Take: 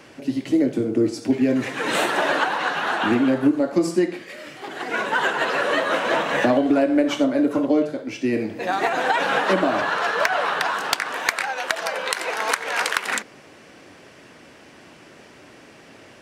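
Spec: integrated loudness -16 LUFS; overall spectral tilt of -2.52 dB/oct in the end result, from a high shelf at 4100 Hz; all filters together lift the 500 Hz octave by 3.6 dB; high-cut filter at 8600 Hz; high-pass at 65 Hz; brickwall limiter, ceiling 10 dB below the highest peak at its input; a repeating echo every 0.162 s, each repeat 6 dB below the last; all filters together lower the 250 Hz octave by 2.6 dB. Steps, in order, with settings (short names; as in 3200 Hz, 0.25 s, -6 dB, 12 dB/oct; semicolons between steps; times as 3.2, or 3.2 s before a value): HPF 65 Hz; LPF 8600 Hz; bell 250 Hz -5.5 dB; bell 500 Hz +6 dB; high shelf 4100 Hz -3.5 dB; limiter -14.5 dBFS; feedback echo 0.162 s, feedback 50%, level -6 dB; gain +7 dB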